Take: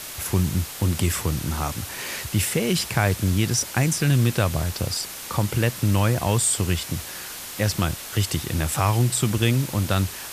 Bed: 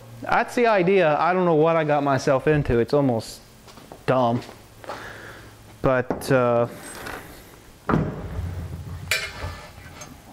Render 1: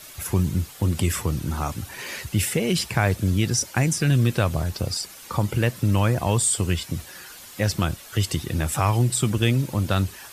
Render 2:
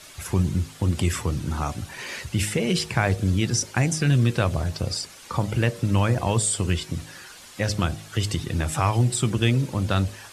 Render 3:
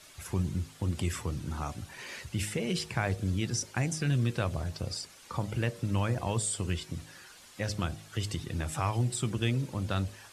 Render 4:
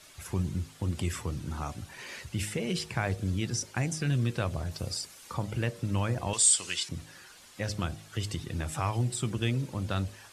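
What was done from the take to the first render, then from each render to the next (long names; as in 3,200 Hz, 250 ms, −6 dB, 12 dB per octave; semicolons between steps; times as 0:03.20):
broadband denoise 10 dB, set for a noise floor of −36 dBFS
Bessel low-pass filter 8,700 Hz, order 4; hum removal 52.39 Hz, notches 15
level −8.5 dB
0:04.71–0:05.34: high-shelf EQ 7,600 Hz +8.5 dB; 0:06.33–0:06.89: meter weighting curve ITU-R 468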